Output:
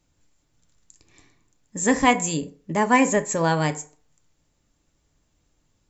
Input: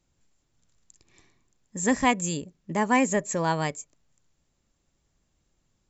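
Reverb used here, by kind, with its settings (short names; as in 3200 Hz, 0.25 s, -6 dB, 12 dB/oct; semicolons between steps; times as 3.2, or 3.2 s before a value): FDN reverb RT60 0.43 s, low-frequency decay 0.85×, high-frequency decay 0.65×, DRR 7.5 dB; gain +3.5 dB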